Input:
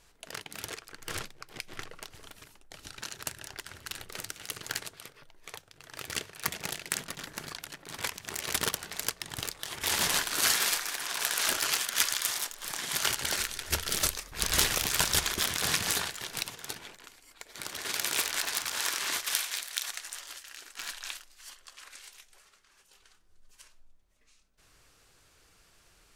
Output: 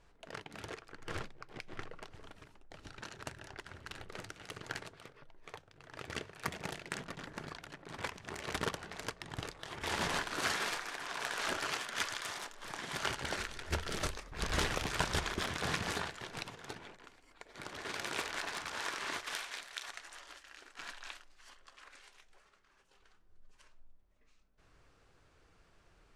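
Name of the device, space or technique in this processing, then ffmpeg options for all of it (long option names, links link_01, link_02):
through cloth: -filter_complex "[0:a]lowpass=9100,highshelf=frequency=2800:gain=-15.5,asettb=1/sr,asplit=3[link_01][link_02][link_03];[link_01]atrim=end=6.304[link_04];[link_02]atrim=start=6.3:end=6.83,asetpts=PTS-STARTPTS,afade=type=in:duration=0.004:curve=qsin,afade=type=out:start_time=0.526:duration=0.004:curve=qsin,highshelf=frequency=9400:gain=6[link_05];[link_03]atrim=start=6.826[link_06];[link_04][link_05]acrossfade=duration=0.004:curve1=hsin:curve2=qsin[link_07];[link_07][link_06]acrossfade=duration=0.004:curve1=qsin:curve2=hsin"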